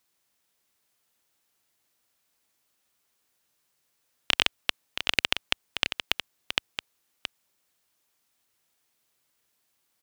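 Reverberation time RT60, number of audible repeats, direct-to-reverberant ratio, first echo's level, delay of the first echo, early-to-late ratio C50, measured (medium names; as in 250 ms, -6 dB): no reverb, 1, no reverb, -8.5 dB, 673 ms, no reverb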